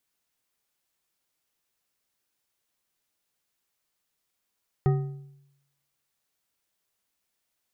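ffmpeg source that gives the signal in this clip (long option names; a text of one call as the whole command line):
ffmpeg -f lavfi -i "aevalsrc='0.141*pow(10,-3*t/0.85)*sin(2*PI*140*t)+0.0631*pow(10,-3*t/0.627)*sin(2*PI*386*t)+0.0282*pow(10,-3*t/0.512)*sin(2*PI*756.6*t)+0.0126*pow(10,-3*t/0.441)*sin(2*PI*1250.6*t)+0.00562*pow(10,-3*t/0.391)*sin(2*PI*1867.6*t)':duration=1.55:sample_rate=44100" out.wav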